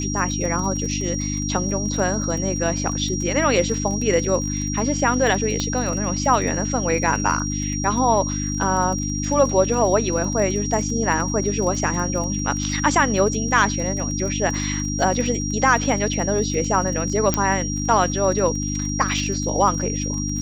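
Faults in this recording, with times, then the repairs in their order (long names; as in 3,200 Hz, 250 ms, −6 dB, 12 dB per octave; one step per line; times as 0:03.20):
surface crackle 28 per second −28 dBFS
mains hum 50 Hz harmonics 6 −26 dBFS
whistle 5,700 Hz −28 dBFS
0:05.60: click −10 dBFS
0:17.34: click −4 dBFS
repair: click removal
notch filter 5,700 Hz, Q 30
hum removal 50 Hz, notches 6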